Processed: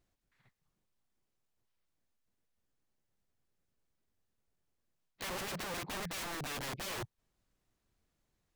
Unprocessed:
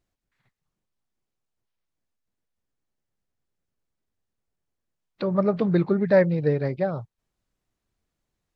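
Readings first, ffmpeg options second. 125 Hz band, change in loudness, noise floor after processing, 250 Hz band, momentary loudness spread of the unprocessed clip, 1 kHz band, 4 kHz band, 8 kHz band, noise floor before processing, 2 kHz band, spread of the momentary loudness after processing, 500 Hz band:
−21.5 dB, −17.0 dB, −83 dBFS, −23.0 dB, 9 LU, −8.0 dB, +7.0 dB, can't be measured, −83 dBFS, −7.0 dB, 4 LU, −23.5 dB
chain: -af "areverse,acompressor=threshold=-29dB:ratio=12,areverse,aeval=exprs='(mod(59.6*val(0)+1,2)-1)/59.6':channel_layout=same"

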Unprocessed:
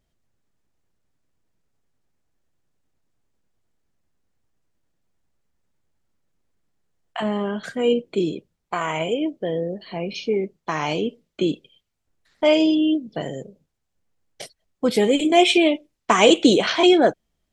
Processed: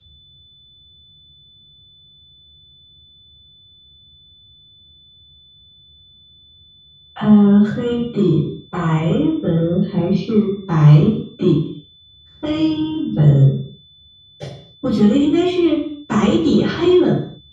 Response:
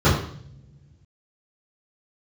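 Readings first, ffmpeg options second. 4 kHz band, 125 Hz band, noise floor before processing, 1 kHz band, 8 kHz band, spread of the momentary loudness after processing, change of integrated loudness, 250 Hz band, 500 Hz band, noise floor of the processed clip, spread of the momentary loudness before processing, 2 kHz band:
−5.5 dB, +21.0 dB, −77 dBFS, −3.5 dB, can't be measured, 13 LU, +4.5 dB, +7.0 dB, 0.0 dB, −49 dBFS, 15 LU, −5.0 dB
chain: -filter_complex "[0:a]lowshelf=frequency=290:gain=10.5,acrossover=split=250|2300[link_01][link_02][link_03];[link_01]acompressor=threshold=-28dB:ratio=4[link_04];[link_02]acompressor=threshold=-25dB:ratio=4[link_05];[link_03]acompressor=threshold=-28dB:ratio=4[link_06];[link_04][link_05][link_06]amix=inputs=3:normalize=0,aeval=exprs='val(0)+0.00562*sin(2*PI*3500*n/s)':channel_layout=same,acrossover=split=290|740[link_07][link_08][link_09];[link_08]asoftclip=type=tanh:threshold=-29.5dB[link_10];[link_07][link_10][link_09]amix=inputs=3:normalize=0[link_11];[1:a]atrim=start_sample=2205,afade=type=out:start_time=0.34:duration=0.01,atrim=end_sample=15435[link_12];[link_11][link_12]afir=irnorm=-1:irlink=0,volume=-17.5dB"

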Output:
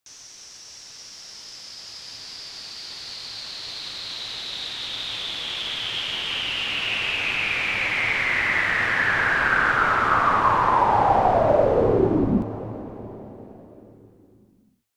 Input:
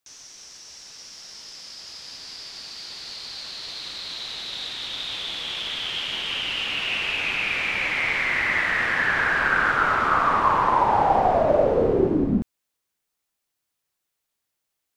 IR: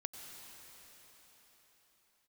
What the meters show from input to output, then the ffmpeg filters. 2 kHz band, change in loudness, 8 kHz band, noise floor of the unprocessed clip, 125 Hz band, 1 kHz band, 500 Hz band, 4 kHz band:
+1.0 dB, +1.0 dB, +1.0 dB, −81 dBFS, +3.5 dB, +1.0 dB, +1.0 dB, +1.0 dB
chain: -filter_complex "[0:a]asplit=2[link_01][link_02];[link_02]equalizer=frequency=110:width_type=o:width=0.27:gain=14.5[link_03];[1:a]atrim=start_sample=2205,asetrate=40572,aresample=44100[link_04];[link_03][link_04]afir=irnorm=-1:irlink=0,volume=-2.5dB[link_05];[link_01][link_05]amix=inputs=2:normalize=0,volume=-3dB"

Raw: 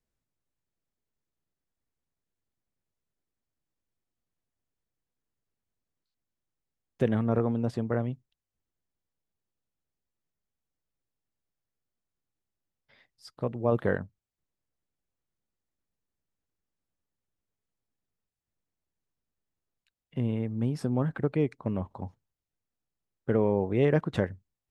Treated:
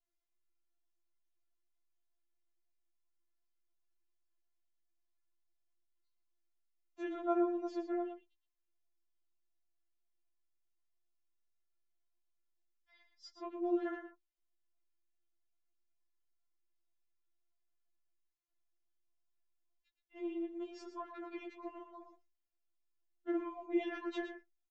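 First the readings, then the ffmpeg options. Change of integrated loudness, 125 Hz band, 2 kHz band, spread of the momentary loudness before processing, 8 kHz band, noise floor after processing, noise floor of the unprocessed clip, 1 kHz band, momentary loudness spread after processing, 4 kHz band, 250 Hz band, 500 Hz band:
−10.5 dB, below −40 dB, −10.0 dB, 14 LU, can't be measured, −84 dBFS, below −85 dBFS, −5.5 dB, 19 LU, −6.5 dB, −8.5 dB, −11.0 dB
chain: -filter_complex "[0:a]aresample=16000,aresample=44100,asplit=2[link_01][link_02];[link_02]adelay=116.6,volume=-9dB,highshelf=frequency=4000:gain=-2.62[link_03];[link_01][link_03]amix=inputs=2:normalize=0,afftfilt=real='re*4*eq(mod(b,16),0)':imag='im*4*eq(mod(b,16),0)':win_size=2048:overlap=0.75,volume=-5dB"

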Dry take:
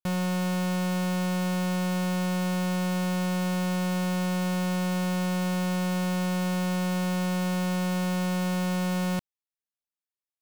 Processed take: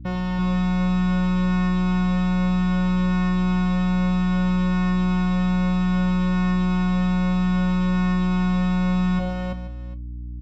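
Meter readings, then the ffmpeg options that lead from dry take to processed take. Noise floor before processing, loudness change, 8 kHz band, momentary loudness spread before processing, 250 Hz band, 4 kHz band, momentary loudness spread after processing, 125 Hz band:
below −85 dBFS, +6.0 dB, below −10 dB, 0 LU, +7.0 dB, −0.5 dB, 4 LU, can't be measured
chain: -filter_complex "[0:a]asplit=2[link_01][link_02];[link_02]aecho=0:1:405:0.112[link_03];[link_01][link_03]amix=inputs=2:normalize=0,afftdn=noise_reduction=29:noise_floor=-38,flanger=delay=8.2:depth=1.4:regen=71:speed=0.62:shape=sinusoidal,aeval=exprs='val(0)+0.00708*(sin(2*PI*60*n/s)+sin(2*PI*2*60*n/s)/2+sin(2*PI*3*60*n/s)/3+sin(2*PI*4*60*n/s)/4+sin(2*PI*5*60*n/s)/5)':channel_layout=same,asplit=2[link_04][link_05];[link_05]aecho=0:1:65|100|138|336|483|748:0.2|0.282|0.141|0.708|0.2|0.106[link_06];[link_04][link_06]amix=inputs=2:normalize=0,volume=6.5dB"

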